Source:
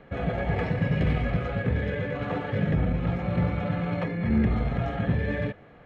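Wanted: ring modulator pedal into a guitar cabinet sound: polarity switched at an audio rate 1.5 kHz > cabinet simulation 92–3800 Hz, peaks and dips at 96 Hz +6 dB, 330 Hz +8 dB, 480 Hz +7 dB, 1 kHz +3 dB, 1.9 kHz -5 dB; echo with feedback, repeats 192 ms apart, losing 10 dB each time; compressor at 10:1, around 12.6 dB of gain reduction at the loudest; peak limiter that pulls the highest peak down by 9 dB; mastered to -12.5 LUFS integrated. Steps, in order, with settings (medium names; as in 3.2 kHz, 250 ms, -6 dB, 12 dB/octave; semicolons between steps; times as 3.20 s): compression 10:1, threshold -33 dBFS; peak limiter -33 dBFS; feedback delay 192 ms, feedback 32%, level -10 dB; polarity switched at an audio rate 1.5 kHz; cabinet simulation 92–3800 Hz, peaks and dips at 96 Hz +6 dB, 330 Hz +8 dB, 480 Hz +7 dB, 1 kHz +3 dB, 1.9 kHz -5 dB; trim +28 dB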